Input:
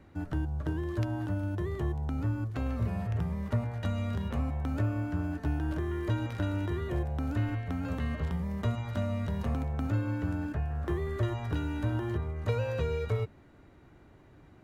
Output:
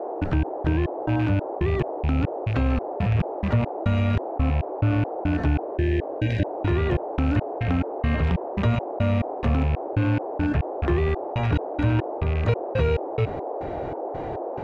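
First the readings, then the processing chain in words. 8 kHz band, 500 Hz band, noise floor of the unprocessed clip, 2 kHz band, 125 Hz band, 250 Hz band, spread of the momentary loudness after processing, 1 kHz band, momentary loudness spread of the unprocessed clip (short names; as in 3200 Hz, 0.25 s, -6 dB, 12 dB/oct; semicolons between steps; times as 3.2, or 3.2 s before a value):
n/a, +10.5 dB, -56 dBFS, +9.5 dB, +7.5 dB, +8.0 dB, 3 LU, +12.0 dB, 2 LU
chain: rattling part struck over -35 dBFS, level -37 dBFS; LPF 4000 Hz 12 dB/oct; step gate "..xx..xx..xxx" 140 bpm -60 dB; band noise 320–810 Hz -52 dBFS; spectral repair 5.7–6.41, 660–1500 Hz before; fast leveller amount 50%; gain +7 dB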